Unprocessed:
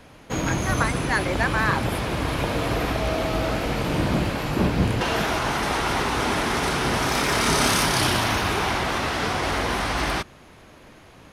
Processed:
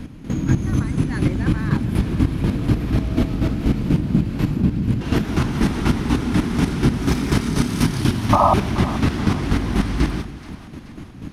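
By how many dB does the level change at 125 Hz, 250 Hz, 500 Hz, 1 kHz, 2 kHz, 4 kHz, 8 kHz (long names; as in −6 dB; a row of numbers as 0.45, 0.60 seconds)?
+7.5, +7.5, −1.5, −1.0, −7.0, −6.5, −7.0 decibels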